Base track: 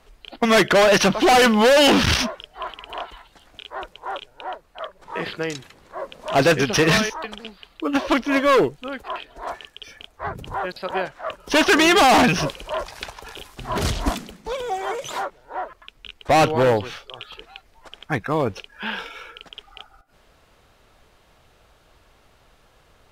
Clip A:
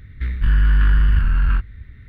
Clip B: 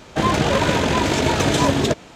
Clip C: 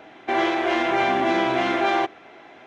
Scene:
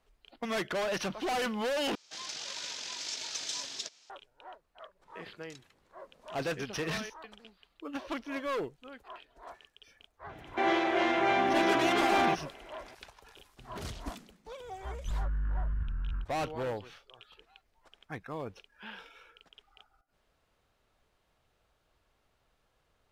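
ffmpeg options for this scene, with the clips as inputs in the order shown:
-filter_complex "[0:a]volume=0.133[s0];[2:a]bandpass=f=5300:t=q:w=2.7:csg=0[s1];[1:a]lowpass=1200[s2];[s0]asplit=2[s3][s4];[s3]atrim=end=1.954[s5];[s1]atrim=end=2.15,asetpts=PTS-STARTPTS,volume=0.562[s6];[s4]atrim=start=4.096[s7];[3:a]atrim=end=2.66,asetpts=PTS-STARTPTS,volume=0.501,afade=t=in:d=0.004:c=hsin,afade=t=out:st=2.656:d=0.004:c=hsin,adelay=10290[s8];[s2]atrim=end=2.08,asetpts=PTS-STARTPTS,volume=0.126,afade=t=in:d=0.004:c=hsin,afade=t=out:st=2.076:d=0.004:c=hsin,adelay=14640[s9];[s5][s6]acrossfade=d=0.004:c1=hsin:c2=hsin[s10];[s10][s7]acrossfade=d=0.004:c1=hsin:c2=hsin[s11];[s11][s8][s9]amix=inputs=3:normalize=0"

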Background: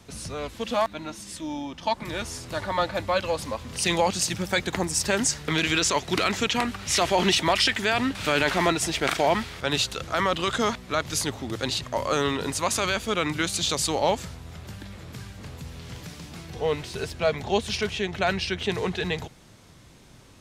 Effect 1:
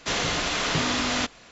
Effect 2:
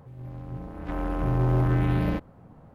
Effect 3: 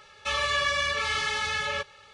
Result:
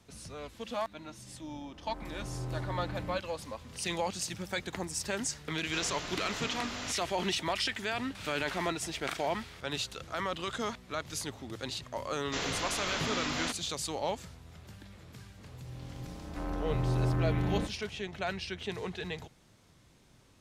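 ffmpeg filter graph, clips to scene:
-filter_complex "[2:a]asplit=2[s0][s1];[1:a]asplit=2[s2][s3];[0:a]volume=0.299[s4];[s0]atrim=end=2.74,asetpts=PTS-STARTPTS,volume=0.168,afade=t=in:d=0.004:c=hsin,afade=t=out:st=2.736:d=0.004:c=hsin,adelay=1000[s5];[s2]atrim=end=1.51,asetpts=PTS-STARTPTS,volume=0.2,afade=t=in:d=0.004:c=hsin,afade=t=out:st=1.506:d=0.004:c=hsin,adelay=5660[s6];[s3]atrim=end=1.51,asetpts=PTS-STARTPTS,volume=0.355,afade=t=in:d=0.004:c=hsin,afade=t=out:st=1.506:d=0.004:c=hsin,adelay=12260[s7];[s1]atrim=end=2.74,asetpts=PTS-STARTPTS,volume=0.473,afade=t=in:d=0.004:c=hsin,afade=t=out:st=2.736:d=0.004:c=hsin,adelay=15480[s8];[s4][s5][s6][s7][s8]amix=inputs=5:normalize=0"

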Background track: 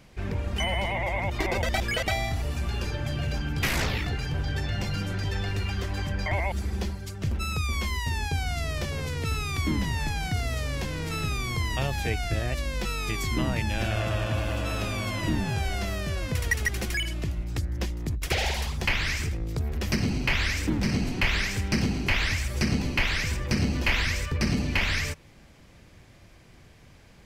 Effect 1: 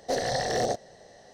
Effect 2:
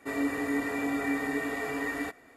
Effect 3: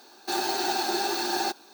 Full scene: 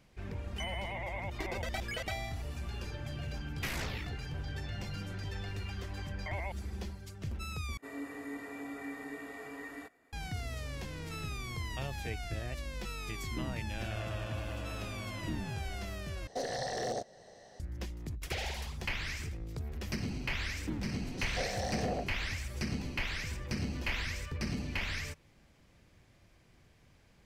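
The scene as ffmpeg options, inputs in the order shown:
-filter_complex "[1:a]asplit=2[s0][s1];[0:a]volume=0.299[s2];[s0]alimiter=level_in=1.12:limit=0.0631:level=0:latency=1:release=249,volume=0.891[s3];[s1]acrossover=split=320|2000[s4][s5][s6];[s6]adelay=40[s7];[s5]adelay=230[s8];[s4][s8][s7]amix=inputs=3:normalize=0[s9];[s2]asplit=3[s10][s11][s12];[s10]atrim=end=7.774[s13];[2:a]atrim=end=2.36,asetpts=PTS-STARTPTS,volume=0.237[s14];[s11]atrim=start=10.126:end=16.274[s15];[s3]atrim=end=1.33,asetpts=PTS-STARTPTS,volume=0.668[s16];[s12]atrim=start=17.596[s17];[s9]atrim=end=1.33,asetpts=PTS-STARTPTS,volume=0.376,afade=t=in:d=0.004:c=hsin,afade=t=out:st=1.326:d=0.004:c=hsin,adelay=21050[s18];[s13][s14]acrossfade=d=0.004:c1=hsin:c2=hsin[s19];[s19][s15]acrossfade=d=0.004:c1=hsin:c2=hsin[s20];[s20][s16]acrossfade=d=0.004:c1=hsin:c2=hsin[s21];[s21][s17]acrossfade=d=0.004:c1=hsin:c2=hsin[s22];[s22][s18]amix=inputs=2:normalize=0"

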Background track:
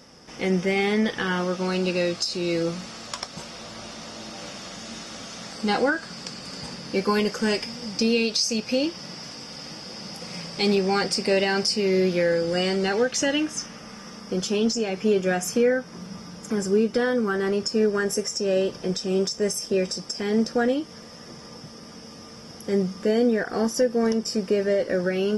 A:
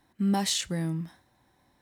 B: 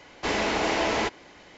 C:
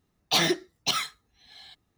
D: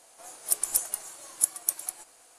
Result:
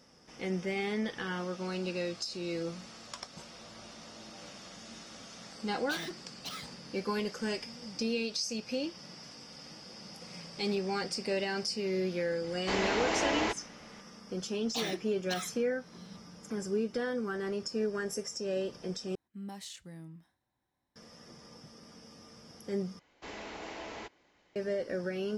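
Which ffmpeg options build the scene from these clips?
-filter_complex "[3:a]asplit=2[s0][s1];[2:a]asplit=2[s2][s3];[0:a]volume=0.282[s4];[s0]asoftclip=type=tanh:threshold=0.0891[s5];[s4]asplit=3[s6][s7][s8];[s6]atrim=end=19.154[s9];[1:a]atrim=end=1.81,asetpts=PTS-STARTPTS,volume=0.133[s10];[s7]atrim=start=20.956:end=22.994[s11];[s3]atrim=end=1.57,asetpts=PTS-STARTPTS,volume=0.126[s12];[s8]atrim=start=24.556[s13];[s5]atrim=end=1.97,asetpts=PTS-STARTPTS,volume=0.211,afade=t=in:d=0.004:c=hsin,afade=t=out:st=1.966:d=0.004:c=hsin,adelay=5580[s14];[s2]atrim=end=1.57,asetpts=PTS-STARTPTS,volume=0.531,afade=t=in:d=0.004:c=hsin,afade=t=out:st=1.566:d=0.004:c=hsin,adelay=12440[s15];[s1]atrim=end=1.97,asetpts=PTS-STARTPTS,volume=0.211,afade=t=in:d=0.004:c=hsin,afade=t=out:st=1.966:d=0.004:c=hsin,adelay=14430[s16];[s9][s10]acrossfade=d=0.004:c1=hsin:c2=hsin[s17];[s17][s11]acrossfade=d=0.004:c1=hsin:c2=hsin[s18];[s18][s12]acrossfade=d=0.004:c1=hsin:c2=hsin[s19];[s19][s13]acrossfade=d=0.004:c1=hsin:c2=hsin[s20];[s20][s14][s15][s16]amix=inputs=4:normalize=0"

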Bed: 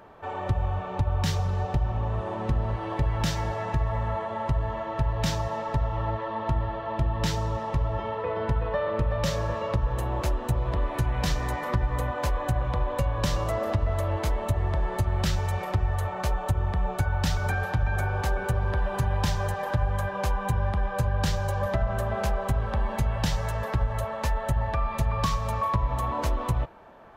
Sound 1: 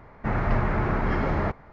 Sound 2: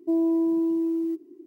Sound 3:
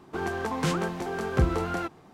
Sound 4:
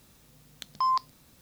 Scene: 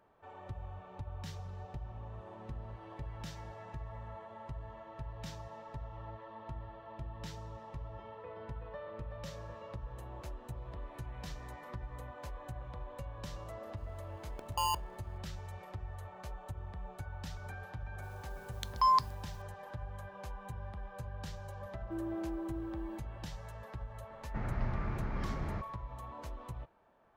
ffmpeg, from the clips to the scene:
-filter_complex "[4:a]asplit=2[s0][s1];[0:a]volume=0.126[s2];[s0]acrusher=samples=23:mix=1:aa=0.000001[s3];[s1]agate=range=0.0224:threshold=0.002:ratio=3:release=100:detection=peak[s4];[1:a]acrossover=split=220|3000[s5][s6][s7];[s6]acompressor=threshold=0.0251:ratio=6:attack=3.2:release=140:knee=2.83:detection=peak[s8];[s5][s8][s7]amix=inputs=3:normalize=0[s9];[s3]atrim=end=1.41,asetpts=PTS-STARTPTS,volume=0.422,afade=t=in:d=0.004:c=hsin,afade=t=out:st=1.406:d=0.004:c=hsin,adelay=13770[s10];[s4]atrim=end=1.41,asetpts=PTS-STARTPTS,volume=0.944,afade=t=in:d=0.004:c=hsin,afade=t=out:st=1.406:d=0.004:c=hsin,adelay=18010[s11];[2:a]atrim=end=1.46,asetpts=PTS-STARTPTS,volume=0.15,afade=t=in:d=0.004:c=hsin,afade=t=out:st=1.456:d=0.004:c=hsin,adelay=21830[s12];[s9]atrim=end=1.72,asetpts=PTS-STARTPTS,volume=0.299,afade=t=in:d=0.004:c=hsin,afade=t=out:st=1.716:d=0.004:c=hsin,adelay=24100[s13];[s2][s10][s11][s12][s13]amix=inputs=5:normalize=0"

